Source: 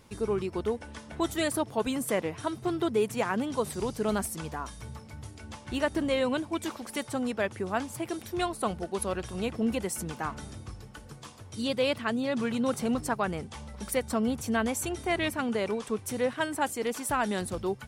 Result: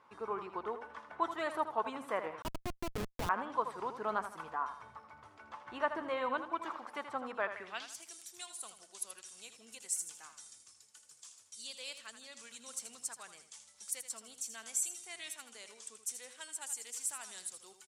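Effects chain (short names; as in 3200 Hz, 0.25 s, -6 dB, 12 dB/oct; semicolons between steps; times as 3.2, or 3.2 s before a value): band-pass sweep 1100 Hz -> 7500 Hz, 7.41–8.04; feedback echo 80 ms, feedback 36%, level -10 dB; 2.42–3.29 Schmitt trigger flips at -35 dBFS; gain +3 dB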